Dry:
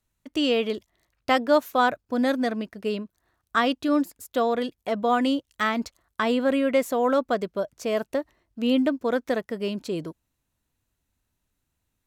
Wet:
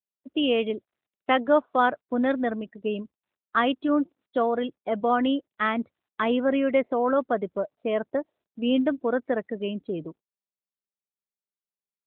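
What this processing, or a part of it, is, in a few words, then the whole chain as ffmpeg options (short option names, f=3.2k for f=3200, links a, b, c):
mobile call with aggressive noise cancelling: -af "highpass=130,afftdn=nr=29:nf=-37" -ar 8000 -c:a libopencore_amrnb -b:a 12200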